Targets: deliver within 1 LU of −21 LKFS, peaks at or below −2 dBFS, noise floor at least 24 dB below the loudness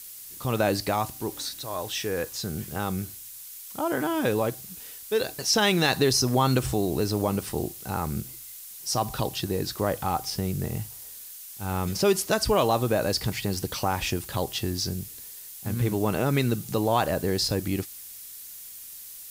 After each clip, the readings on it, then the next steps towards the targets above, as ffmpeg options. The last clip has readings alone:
background noise floor −43 dBFS; target noise floor −51 dBFS; integrated loudness −27.0 LKFS; sample peak −10.0 dBFS; target loudness −21.0 LKFS
→ -af "afftdn=noise_reduction=8:noise_floor=-43"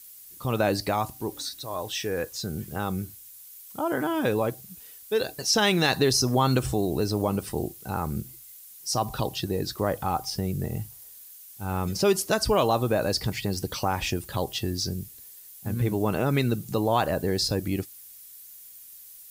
background noise floor −47 dBFS; target noise floor −51 dBFS
→ -af "afftdn=noise_reduction=6:noise_floor=-47"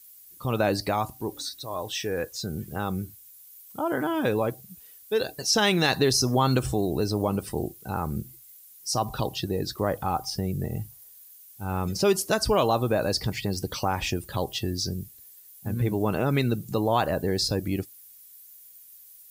background noise floor −51 dBFS; integrated loudness −27.0 LKFS; sample peak −10.0 dBFS; target loudness −21.0 LKFS
→ -af "volume=6dB"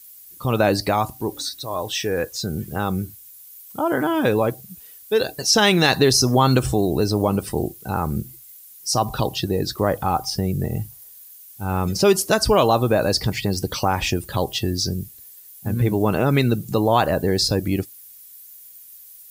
integrated loudness −21.0 LKFS; sample peak −4.0 dBFS; background noise floor −45 dBFS

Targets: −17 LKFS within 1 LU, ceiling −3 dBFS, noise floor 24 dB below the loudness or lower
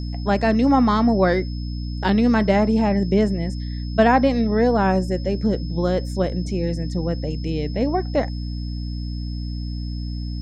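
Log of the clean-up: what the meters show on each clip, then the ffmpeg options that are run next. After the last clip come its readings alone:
mains hum 60 Hz; hum harmonics up to 300 Hz; level of the hum −25 dBFS; interfering tone 5,200 Hz; level of the tone −42 dBFS; integrated loudness −21.5 LKFS; sample peak −4.0 dBFS; target loudness −17.0 LKFS
→ -af "bandreject=frequency=60:width_type=h:width=6,bandreject=frequency=120:width_type=h:width=6,bandreject=frequency=180:width_type=h:width=6,bandreject=frequency=240:width_type=h:width=6,bandreject=frequency=300:width_type=h:width=6"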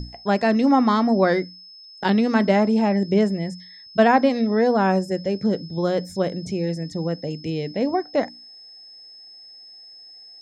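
mains hum none found; interfering tone 5,200 Hz; level of the tone −42 dBFS
→ -af "bandreject=frequency=5200:width=30"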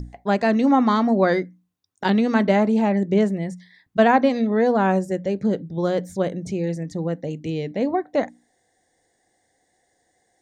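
interfering tone none found; integrated loudness −21.5 LKFS; sample peak −4.5 dBFS; target loudness −17.0 LKFS
→ -af "volume=4.5dB,alimiter=limit=-3dB:level=0:latency=1"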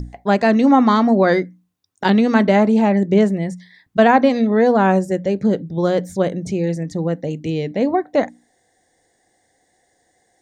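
integrated loudness −17.0 LKFS; sample peak −3.0 dBFS; background noise floor −65 dBFS

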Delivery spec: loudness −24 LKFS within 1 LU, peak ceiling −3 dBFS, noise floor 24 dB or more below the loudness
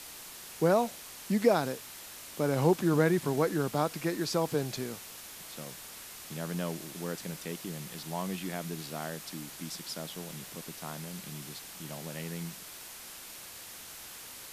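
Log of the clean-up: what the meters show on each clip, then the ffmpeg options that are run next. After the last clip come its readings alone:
background noise floor −47 dBFS; target noise floor −58 dBFS; integrated loudness −34.0 LKFS; sample peak −12.0 dBFS; target loudness −24.0 LKFS
→ -af "afftdn=noise_reduction=11:noise_floor=-47"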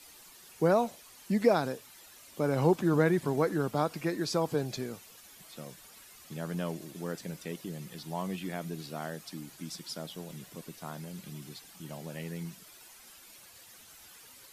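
background noise floor −54 dBFS; target noise floor −57 dBFS
→ -af "afftdn=noise_reduction=6:noise_floor=-54"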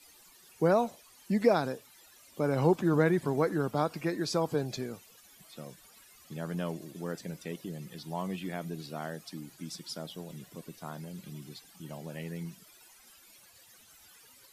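background noise floor −58 dBFS; integrated loudness −32.5 LKFS; sample peak −12.0 dBFS; target loudness −24.0 LKFS
→ -af "volume=8.5dB"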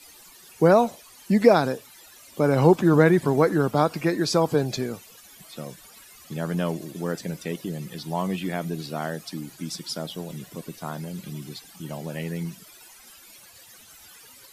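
integrated loudness −24.0 LKFS; sample peak −3.5 dBFS; background noise floor −50 dBFS

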